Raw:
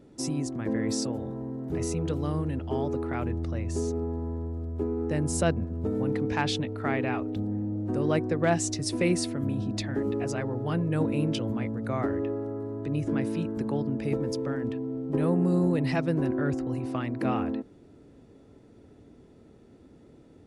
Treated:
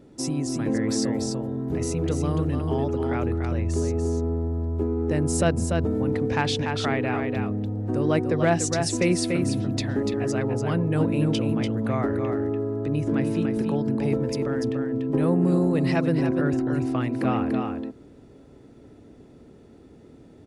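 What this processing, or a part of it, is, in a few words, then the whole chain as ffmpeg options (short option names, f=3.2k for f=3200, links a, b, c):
ducked delay: -filter_complex "[0:a]asplit=3[a][b][c];[b]adelay=291,volume=-4dB[d];[c]apad=whole_len=915509[e];[d][e]sidechaincompress=threshold=-28dB:ratio=8:attack=41:release=230[f];[a][f]amix=inputs=2:normalize=0,volume=3dB"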